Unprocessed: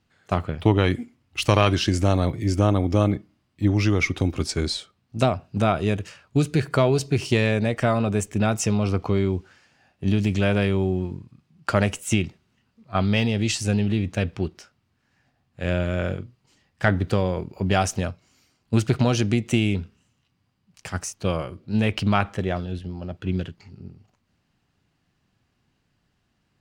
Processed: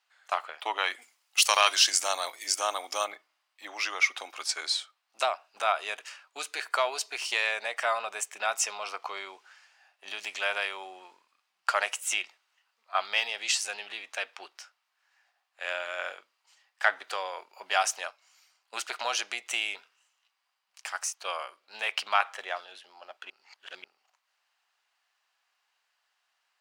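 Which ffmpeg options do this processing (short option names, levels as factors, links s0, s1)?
-filter_complex "[0:a]asplit=3[s0][s1][s2];[s0]afade=t=out:st=1.01:d=0.02[s3];[s1]bass=f=250:g=1,treble=f=4000:g=12,afade=t=in:st=1.01:d=0.02,afade=t=out:st=3.04:d=0.02[s4];[s2]afade=t=in:st=3.04:d=0.02[s5];[s3][s4][s5]amix=inputs=3:normalize=0,asplit=3[s6][s7][s8];[s6]atrim=end=23.302[s9];[s7]atrim=start=23.298:end=23.842,asetpts=PTS-STARTPTS,areverse[s10];[s8]atrim=start=23.838[s11];[s9][s10]acrossfade=d=0.004:c1=hsin:c2=hsin[s12];[s12][s11]acrossfade=d=0.004:c1=hsin:c2=hsin,highpass=f=780:w=0.5412,highpass=f=780:w=1.3066"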